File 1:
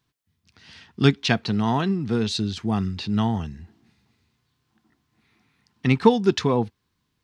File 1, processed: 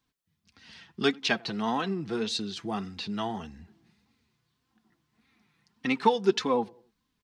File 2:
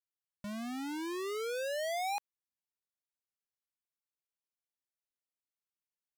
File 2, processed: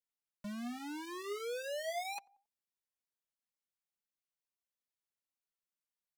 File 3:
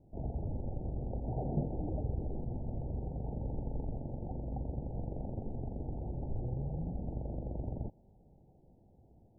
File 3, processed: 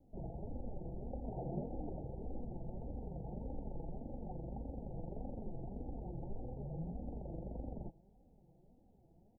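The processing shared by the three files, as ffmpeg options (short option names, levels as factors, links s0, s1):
-filter_complex "[0:a]acrossover=split=290[s0][s1];[s0]acompressor=threshold=0.0158:ratio=6[s2];[s2][s1]amix=inputs=2:normalize=0,asplit=2[s3][s4];[s4]adelay=91,lowpass=f=820:p=1,volume=0.0708,asplit=2[s5][s6];[s6]adelay=91,lowpass=f=820:p=1,volume=0.49,asplit=2[s7][s8];[s8]adelay=91,lowpass=f=820:p=1,volume=0.49[s9];[s3][s5][s7][s9]amix=inputs=4:normalize=0,flanger=delay=3.7:depth=2.4:regen=18:speed=1.7:shape=sinusoidal"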